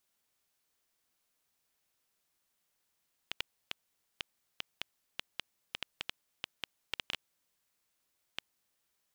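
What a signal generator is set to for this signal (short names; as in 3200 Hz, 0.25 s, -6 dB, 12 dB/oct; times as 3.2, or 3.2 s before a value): random clicks 4.1/s -17 dBFS 5.29 s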